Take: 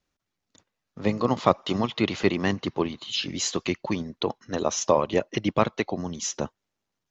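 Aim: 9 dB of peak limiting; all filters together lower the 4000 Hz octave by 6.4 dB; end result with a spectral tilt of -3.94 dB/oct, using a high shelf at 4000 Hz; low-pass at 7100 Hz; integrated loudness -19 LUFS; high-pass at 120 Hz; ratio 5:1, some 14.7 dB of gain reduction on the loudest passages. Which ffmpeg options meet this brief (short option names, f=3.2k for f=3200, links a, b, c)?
-af "highpass=120,lowpass=7.1k,highshelf=f=4k:g=-3,equalizer=f=4k:t=o:g=-6.5,acompressor=threshold=-32dB:ratio=5,volume=20dB,alimiter=limit=-5.5dB:level=0:latency=1"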